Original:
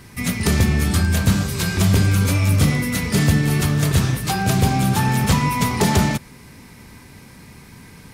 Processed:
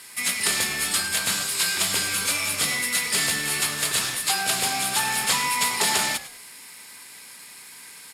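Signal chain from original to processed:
variable-slope delta modulation 64 kbit/s
high-pass filter 590 Hz 6 dB per octave
spectral tilt +3.5 dB per octave
notch filter 6,000 Hz, Q 6.6
echo with shifted repeats 102 ms, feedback 30%, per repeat −71 Hz, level −15 dB
level −2 dB

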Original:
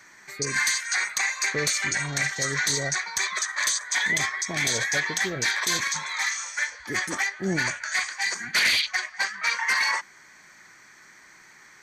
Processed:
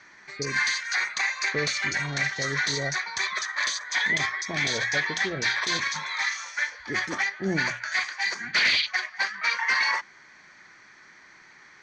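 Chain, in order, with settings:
low-pass filter 5,300 Hz 24 dB per octave
mains-hum notches 60/120/180 Hz

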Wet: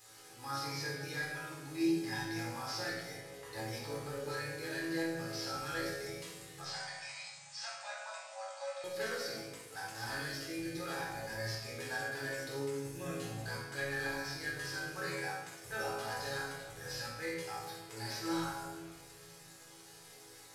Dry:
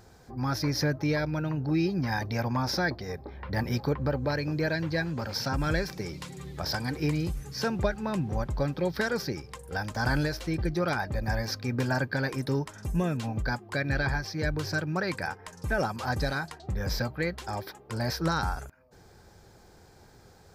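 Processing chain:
linear delta modulator 64 kbit/s, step −42.5 dBFS
spectral tilt +3.5 dB per octave
0:06.60–0:08.84: linear-phase brick-wall band-pass 530–9,200 Hz
resonators tuned to a chord A2 major, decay 0.73 s
convolution reverb RT60 1.5 s, pre-delay 17 ms, DRR 0.5 dB
level +5.5 dB

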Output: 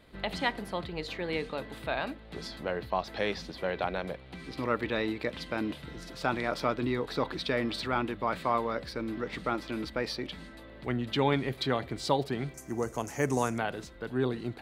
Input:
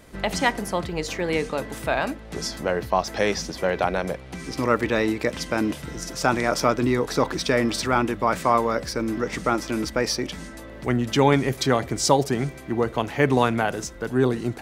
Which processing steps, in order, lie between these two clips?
high shelf with overshoot 4,900 Hz −6.5 dB, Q 3, from 0:12.54 +9.5 dB, from 0:13.58 −6 dB
level −9 dB

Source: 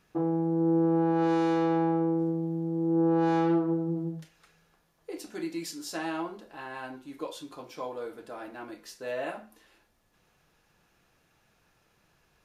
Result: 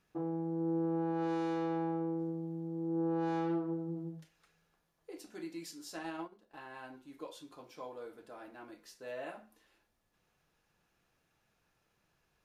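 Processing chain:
0:05.96–0:06.59: transient designer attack +6 dB, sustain −11 dB
level −9 dB

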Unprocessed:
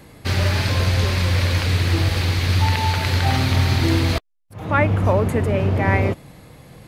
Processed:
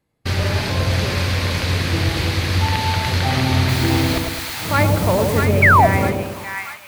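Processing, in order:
noise gate −32 dBFS, range −28 dB
0:03.68–0:05.44: background noise white −34 dBFS
on a send: echo with a time of its own for lows and highs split 990 Hz, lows 107 ms, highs 643 ms, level −3.5 dB
0:05.62–0:05.87: on the sum: sound drawn into the spectrogram fall 610–2,400 Hz −11 dBFS

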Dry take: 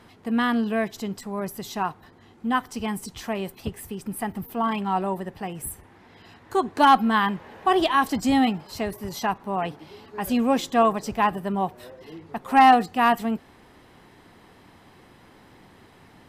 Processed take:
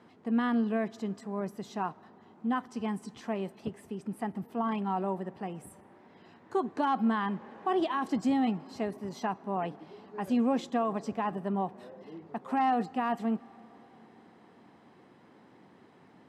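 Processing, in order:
brickwall limiter −15.5 dBFS, peak gain reduction 8.5 dB
Chebyshev band-pass filter 190–7,900 Hz, order 2
high-shelf EQ 2,100 Hz −11 dB
on a send: convolution reverb RT60 4.4 s, pre-delay 90 ms, DRR 23.5 dB
on the sum: level −3.5 dB

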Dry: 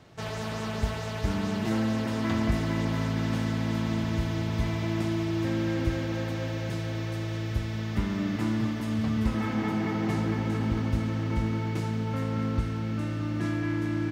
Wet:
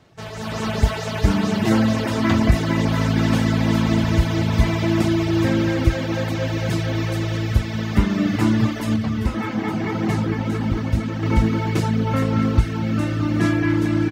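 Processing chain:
reverb reduction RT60 1.1 s
automatic gain control gain up to 13.5 dB
0:08.96–0:11.23: flanger 1.8 Hz, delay 4.8 ms, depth 7.3 ms, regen −65%

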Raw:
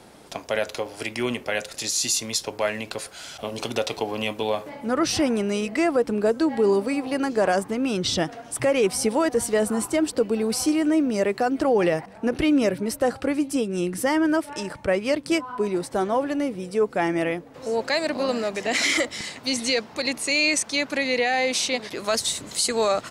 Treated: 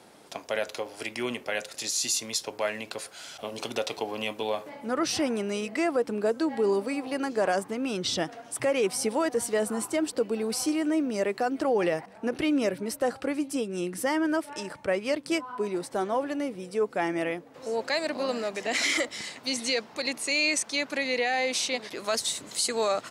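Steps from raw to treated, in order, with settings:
high-pass filter 210 Hz 6 dB per octave
level −4 dB

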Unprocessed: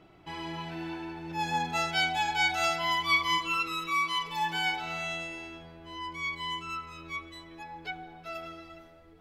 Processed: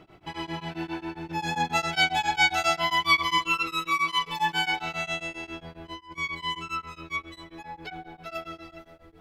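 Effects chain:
0:05.43–0:06.18: compressor whose output falls as the input rises −43 dBFS, ratio −0.5
tremolo along a rectified sine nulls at 7.4 Hz
level +6.5 dB

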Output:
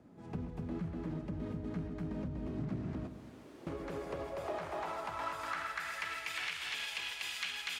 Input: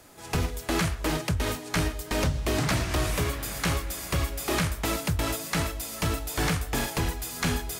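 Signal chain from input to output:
parametric band 270 Hz −5 dB 2.6 octaves
repeating echo 243 ms, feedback 28%, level −6 dB
brickwall limiter −22.5 dBFS, peak gain reduction 7 dB
0:03.07–0:03.67: wrap-around overflow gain 38 dB
band-pass filter sweep 210 Hz → 2,800 Hz, 0:03.02–0:06.58
downward compressor 2.5 to 1, threshold −48 dBFS, peak gain reduction 8.5 dB
feedback echo with a low-pass in the loop 131 ms, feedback 52%, level −10 dB
level +9 dB

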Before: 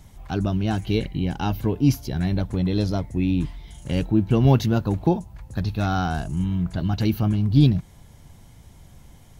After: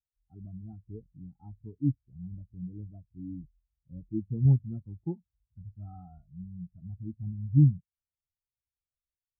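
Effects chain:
hearing-aid frequency compression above 1,100 Hz 1.5 to 1
Chebyshev low-pass filter 1,500 Hz, order 5
every bin expanded away from the loudest bin 2.5 to 1
level −6 dB

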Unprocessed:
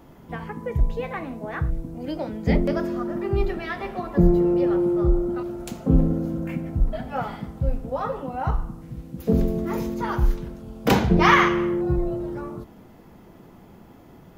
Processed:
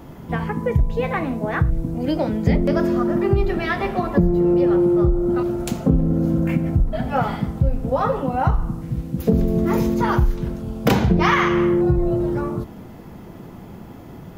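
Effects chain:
parametric band 110 Hz +4.5 dB 1.9 octaves
downward compressor 6 to 1, threshold −21 dBFS, peak gain reduction 11.5 dB
level +7.5 dB

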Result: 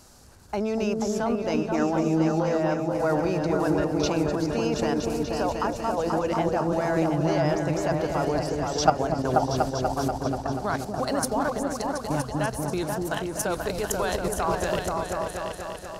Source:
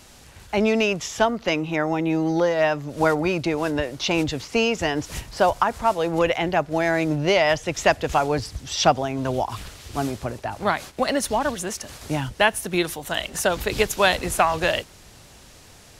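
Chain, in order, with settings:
output level in coarse steps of 13 dB
flat-topped bell 2,600 Hz −9 dB 1.2 octaves
echo whose low-pass opens from repeat to repeat 242 ms, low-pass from 400 Hz, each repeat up 2 octaves, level 0 dB

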